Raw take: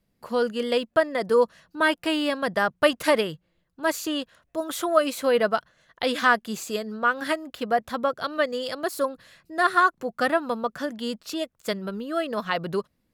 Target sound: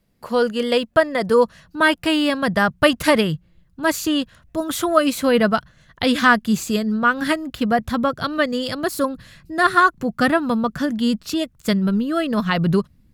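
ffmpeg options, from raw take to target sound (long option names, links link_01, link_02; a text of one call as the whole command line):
ffmpeg -i in.wav -af "asubboost=boost=6:cutoff=200,volume=6dB" out.wav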